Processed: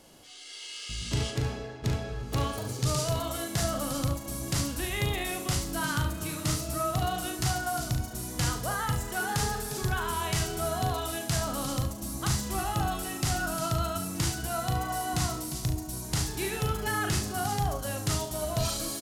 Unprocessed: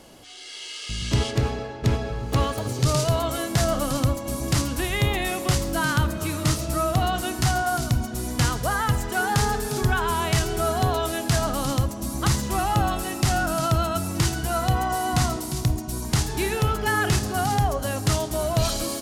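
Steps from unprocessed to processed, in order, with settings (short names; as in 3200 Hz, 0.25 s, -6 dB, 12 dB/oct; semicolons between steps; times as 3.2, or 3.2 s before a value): high shelf 4200 Hz +5 dB; on a send: early reflections 39 ms -6.5 dB, 71 ms -9.5 dB; on the sum: gain -8.5 dB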